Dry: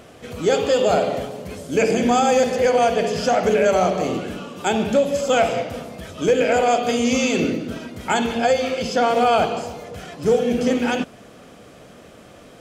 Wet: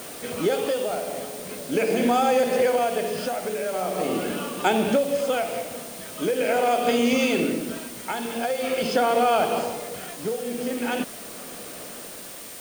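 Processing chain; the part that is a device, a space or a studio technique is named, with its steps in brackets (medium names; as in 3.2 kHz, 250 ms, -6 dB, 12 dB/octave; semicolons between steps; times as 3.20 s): medium wave at night (band-pass 200–4400 Hz; compression, threshold -21 dBFS, peak gain reduction 8.5 dB; tremolo 0.43 Hz, depth 64%; whistle 9 kHz -49 dBFS; white noise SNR 16 dB); trim +4 dB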